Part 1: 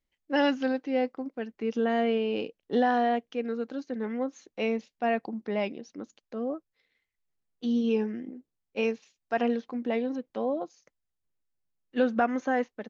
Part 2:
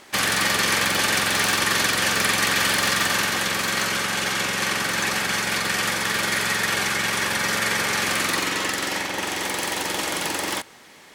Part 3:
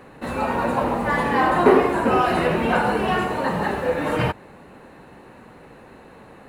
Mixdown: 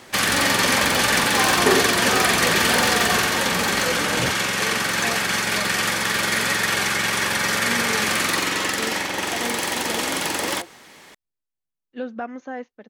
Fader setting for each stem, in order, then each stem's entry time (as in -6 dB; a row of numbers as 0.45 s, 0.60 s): -5.5 dB, +1.5 dB, -5.0 dB; 0.00 s, 0.00 s, 0.00 s